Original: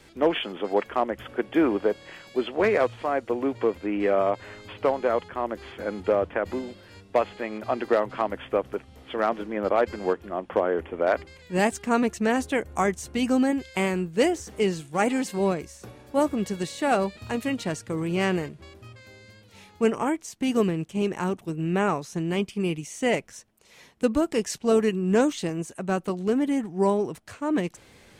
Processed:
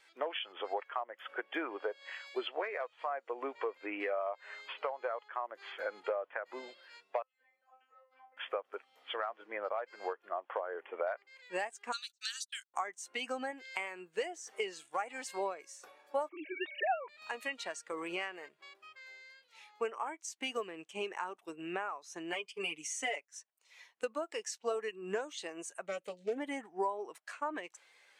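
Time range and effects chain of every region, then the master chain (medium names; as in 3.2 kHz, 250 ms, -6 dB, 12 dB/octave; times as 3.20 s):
7.22–8.37 s: compression 3:1, threshold -39 dBFS + feedback comb 260 Hz, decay 0.36 s, mix 100%
11.92–12.74 s: gate -32 dBFS, range -35 dB + steep high-pass 1.3 kHz 48 dB/octave + resonant high shelf 2.8 kHz +10.5 dB, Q 3
16.29–17.09 s: formants replaced by sine waves + peaking EQ 2.3 kHz +5.5 dB 0.5 oct
22.32–23.32 s: overload inside the chain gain 16 dB + comb 6.9 ms, depth 97% + gate -41 dBFS, range -10 dB
25.86–26.38 s: high-order bell 1 kHz -11 dB 1.3 oct + comb of notches 370 Hz + loudspeaker Doppler distortion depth 0.2 ms
whole clip: high-pass 860 Hz 12 dB/octave; compression 12:1, threshold -37 dBFS; spectral contrast expander 1.5:1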